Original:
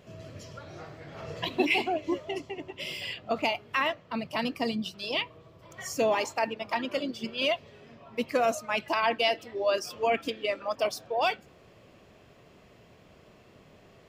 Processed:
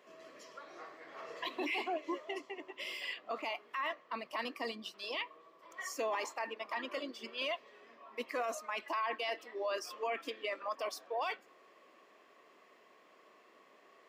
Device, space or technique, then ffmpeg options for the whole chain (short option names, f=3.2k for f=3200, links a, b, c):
laptop speaker: -af "highpass=f=290:w=0.5412,highpass=f=290:w=1.3066,equalizer=f=1.1k:t=o:w=0.27:g=11.5,equalizer=f=1.9k:t=o:w=0.44:g=7,alimiter=limit=-20.5dB:level=0:latency=1:release=14,volume=-7.5dB"